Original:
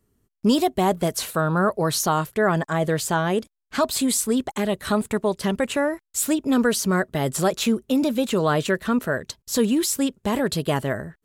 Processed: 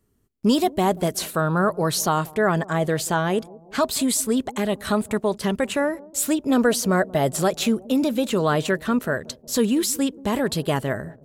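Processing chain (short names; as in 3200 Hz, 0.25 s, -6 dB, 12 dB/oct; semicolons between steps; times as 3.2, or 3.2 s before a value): 6.5–7.29 bell 640 Hz +8 dB 0.53 oct; on a send: analogue delay 0.183 s, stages 1024, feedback 55%, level -21 dB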